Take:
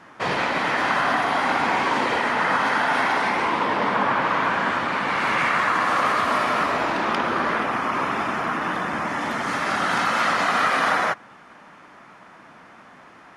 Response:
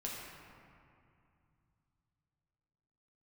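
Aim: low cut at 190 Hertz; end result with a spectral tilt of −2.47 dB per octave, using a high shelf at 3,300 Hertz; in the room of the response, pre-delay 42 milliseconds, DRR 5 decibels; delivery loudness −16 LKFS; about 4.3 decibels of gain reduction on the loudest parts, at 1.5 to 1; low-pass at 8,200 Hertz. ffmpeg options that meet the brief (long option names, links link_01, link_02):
-filter_complex "[0:a]highpass=190,lowpass=8200,highshelf=frequency=3300:gain=8,acompressor=threshold=-28dB:ratio=1.5,asplit=2[link_01][link_02];[1:a]atrim=start_sample=2205,adelay=42[link_03];[link_02][link_03]afir=irnorm=-1:irlink=0,volume=-6dB[link_04];[link_01][link_04]amix=inputs=2:normalize=0,volume=7dB"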